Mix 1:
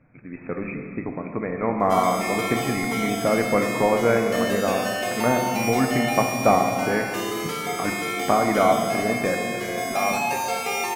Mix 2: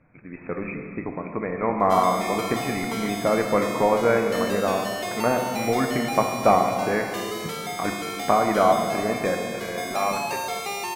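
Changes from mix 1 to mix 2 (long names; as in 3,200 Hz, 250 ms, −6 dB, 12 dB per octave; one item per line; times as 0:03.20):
background: send −11.0 dB
master: add thirty-one-band graphic EQ 125 Hz −5 dB, 250 Hz −4 dB, 1,000 Hz +3 dB, 4,000 Hz +7 dB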